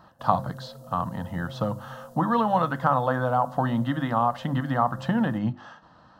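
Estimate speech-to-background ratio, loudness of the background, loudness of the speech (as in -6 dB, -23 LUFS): 17.0 dB, -43.0 LUFS, -26.0 LUFS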